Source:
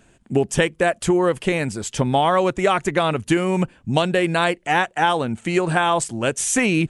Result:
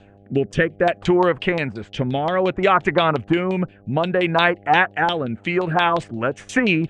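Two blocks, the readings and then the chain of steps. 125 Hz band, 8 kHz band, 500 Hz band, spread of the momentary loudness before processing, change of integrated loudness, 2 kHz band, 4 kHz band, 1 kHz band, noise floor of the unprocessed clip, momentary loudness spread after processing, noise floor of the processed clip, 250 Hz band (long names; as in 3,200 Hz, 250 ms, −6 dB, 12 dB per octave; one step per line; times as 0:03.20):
−0.5 dB, below −15 dB, 0.0 dB, 5 LU, +0.5 dB, +2.0 dB, 0.0 dB, +0.5 dB, −57 dBFS, 8 LU, −49 dBFS, 0.0 dB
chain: auto-filter low-pass saw down 5.7 Hz 870–4,100 Hz
hum with harmonics 100 Hz, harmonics 8, −48 dBFS −3 dB per octave
rotating-speaker cabinet horn 0.6 Hz, later 6 Hz, at 0:05.16
level +1 dB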